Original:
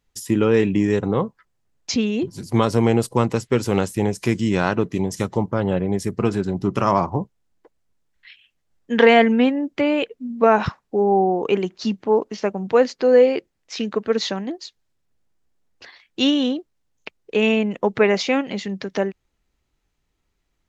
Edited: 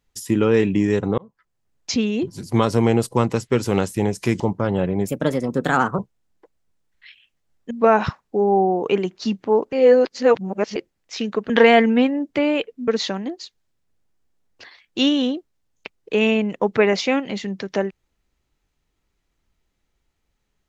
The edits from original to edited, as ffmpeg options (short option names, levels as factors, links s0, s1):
-filter_complex "[0:a]asplit=10[s0][s1][s2][s3][s4][s5][s6][s7][s8][s9];[s0]atrim=end=1.18,asetpts=PTS-STARTPTS,afade=t=out:st=1.176:d=0.004:c=hsin[s10];[s1]atrim=start=1.18:end=4.402,asetpts=PTS-STARTPTS,afade=t=in:d=0.77:c=qsin[s11];[s2]atrim=start=5.328:end=6.004[s12];[s3]atrim=start=6:end=7.2,asetpts=PTS-STARTPTS,asetrate=57771,aresample=44100[s13];[s4]atrim=start=7.196:end=8.922[s14];[s5]atrim=start=10.298:end=12.322[s15];[s6]atrim=start=12.318:end=13.352,asetpts=PTS-STARTPTS,areverse[s16];[s7]atrim=start=13.348:end=14.092[s17];[s8]atrim=start=8.918:end=10.302[s18];[s9]atrim=start=14.088[s19];[s10][s11]concat=n=2:v=0:a=1[s20];[s20][s12]acrossfade=d=0.004:c1=hsin:c2=hsin[s21];[s21][s13]acrossfade=d=0.004:c1=hsin:c2=hsin[s22];[s22][s14]acrossfade=d=0.004:c1=hsin:c2=hsin[s23];[s23][s15]acrossfade=d=0.004:c1=hsin:c2=hsin[s24];[s24][s16]acrossfade=d=0.004:c1=hsin:c2=hsin[s25];[s25][s17]acrossfade=d=0.004:c1=hsin:c2=hsin[s26];[s26][s18]acrossfade=d=0.004:c1=hsin:c2=hsin[s27];[s27][s19]acrossfade=d=0.004:c1=hsin:c2=hsin"